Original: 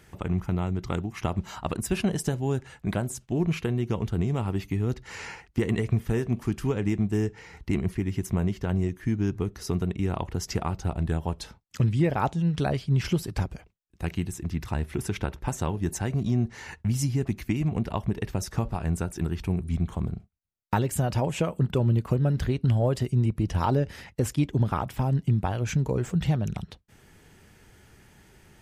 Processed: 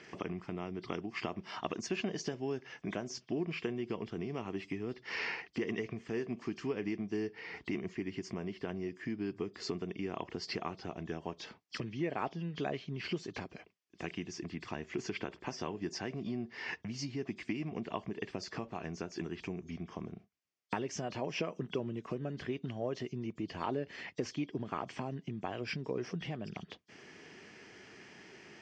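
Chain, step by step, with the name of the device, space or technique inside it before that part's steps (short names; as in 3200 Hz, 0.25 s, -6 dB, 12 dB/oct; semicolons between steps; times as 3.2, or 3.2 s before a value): hearing aid with frequency lowering (nonlinear frequency compression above 3100 Hz 1.5:1; compressor 2.5:1, threshold -39 dBFS, peak gain reduction 14 dB; speaker cabinet 320–5400 Hz, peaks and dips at 540 Hz -6 dB, 860 Hz -8 dB, 1400 Hz -7 dB, 3900 Hz -9 dB); gain +7.5 dB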